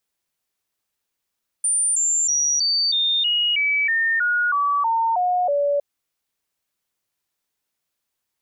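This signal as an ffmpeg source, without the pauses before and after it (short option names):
-f lavfi -i "aevalsrc='0.141*clip(min(mod(t,0.32),0.32-mod(t,0.32))/0.005,0,1)*sin(2*PI*9170*pow(2,-floor(t/0.32)/3)*mod(t,0.32))':d=4.16:s=44100"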